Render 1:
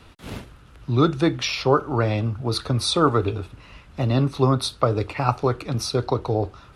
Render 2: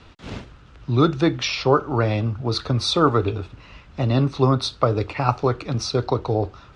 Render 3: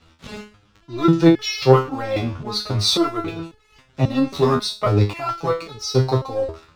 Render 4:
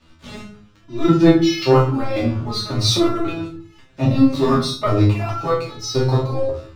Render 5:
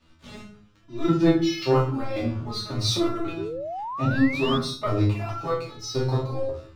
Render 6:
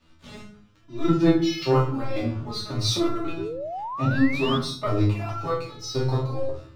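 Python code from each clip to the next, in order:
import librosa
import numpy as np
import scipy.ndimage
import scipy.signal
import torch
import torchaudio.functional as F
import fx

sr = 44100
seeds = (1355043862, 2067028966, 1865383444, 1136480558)

y1 = scipy.signal.sosfilt(scipy.signal.butter(4, 6900.0, 'lowpass', fs=sr, output='sos'), x)
y1 = y1 * 10.0 ** (1.0 / 20.0)
y2 = fx.high_shelf(y1, sr, hz=5300.0, db=8.0)
y2 = fx.leveller(y2, sr, passes=2)
y2 = fx.resonator_held(y2, sr, hz=3.7, low_hz=81.0, high_hz=430.0)
y2 = y2 * 10.0 ** (5.0 / 20.0)
y3 = fx.room_shoebox(y2, sr, seeds[0], volume_m3=320.0, walls='furnished', distance_m=2.6)
y3 = y3 * 10.0 ** (-3.5 / 20.0)
y4 = fx.spec_paint(y3, sr, seeds[1], shape='rise', start_s=3.37, length_s=1.21, low_hz=360.0, high_hz=3500.0, level_db=-25.0)
y4 = y4 * 10.0 ** (-7.0 / 20.0)
y5 = fx.room_shoebox(y4, sr, seeds[2], volume_m3=3000.0, walls='furnished', distance_m=0.39)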